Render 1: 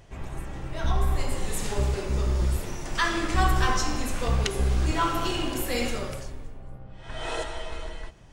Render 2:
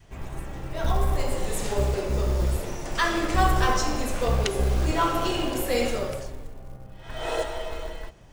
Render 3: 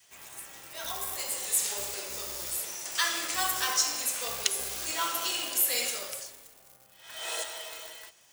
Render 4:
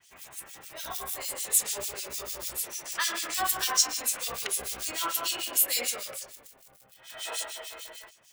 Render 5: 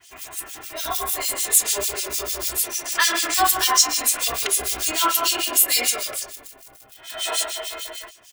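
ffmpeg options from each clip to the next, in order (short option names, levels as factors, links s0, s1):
-af "adynamicequalizer=threshold=0.00562:dfrequency=550:dqfactor=1.4:tfrequency=550:tqfactor=1.4:attack=5:release=100:ratio=0.375:range=3.5:mode=boostabove:tftype=bell,acrusher=bits=7:mode=log:mix=0:aa=0.000001"
-af "aderivative,volume=2.51"
-filter_complex "[0:a]acrossover=split=2300[s0][s1];[s0]aeval=exprs='val(0)*(1-1/2+1/2*cos(2*PI*6.7*n/s))':c=same[s2];[s1]aeval=exprs='val(0)*(1-1/2-1/2*cos(2*PI*6.7*n/s))':c=same[s3];[s2][s3]amix=inputs=2:normalize=0,volume=1.68"
-filter_complex "[0:a]aecho=1:1:2.9:0.62,asplit=2[s0][s1];[s1]alimiter=limit=0.141:level=0:latency=1:release=136,volume=0.944[s2];[s0][s2]amix=inputs=2:normalize=0,volume=1.41"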